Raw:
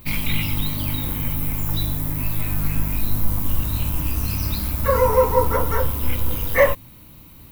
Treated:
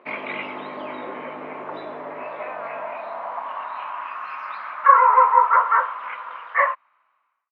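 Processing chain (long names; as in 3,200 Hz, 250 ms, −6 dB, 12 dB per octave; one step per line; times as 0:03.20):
fade-out on the ending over 1.72 s
parametric band 420 Hz −2 dB
in parallel at −7 dB: bit-depth reduction 6 bits, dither none
on the sum: loudspeaker in its box 300–2,100 Hz, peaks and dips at 310 Hz −7 dB, 640 Hz +6 dB, 1,100 Hz +4 dB
high-pass filter sweep 380 Hz → 1,200 Hz, 0:01.81–0:04.20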